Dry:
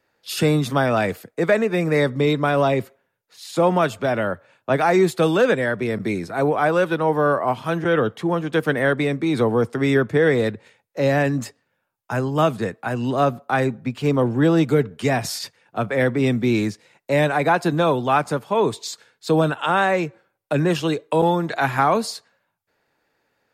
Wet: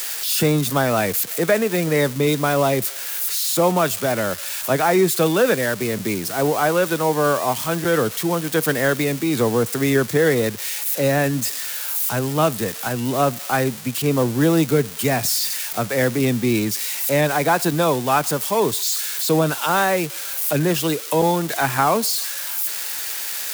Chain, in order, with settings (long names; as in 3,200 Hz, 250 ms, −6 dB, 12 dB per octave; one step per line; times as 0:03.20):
spike at every zero crossing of −16.5 dBFS